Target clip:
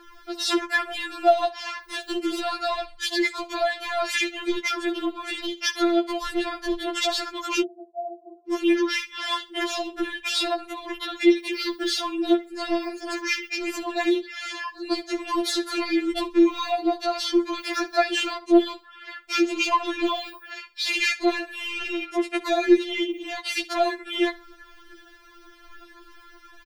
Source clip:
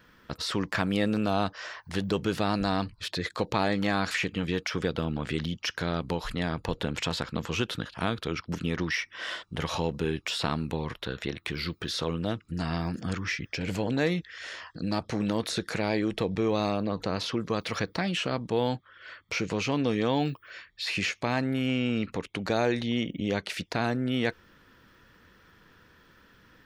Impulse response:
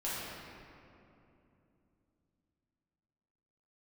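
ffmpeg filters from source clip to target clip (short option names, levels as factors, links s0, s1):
-filter_complex "[0:a]alimiter=limit=0.133:level=0:latency=1:release=250,aphaser=in_gain=1:out_gain=1:delay=3.5:decay=0.64:speed=1.1:type=triangular,aecho=1:1:67|134:0.106|0.0286,asoftclip=type=tanh:threshold=0.158,asplit=3[s0][s1][s2];[s0]afade=t=out:st=7.6:d=0.02[s3];[s1]asuperpass=centerf=540:order=12:qfactor=1.4,afade=t=in:st=7.6:d=0.02,afade=t=out:st=8.47:d=0.02[s4];[s2]afade=t=in:st=8.47:d=0.02[s5];[s3][s4][s5]amix=inputs=3:normalize=0,afftfilt=real='re*4*eq(mod(b,16),0)':imag='im*4*eq(mod(b,16),0)':win_size=2048:overlap=0.75,volume=2.51"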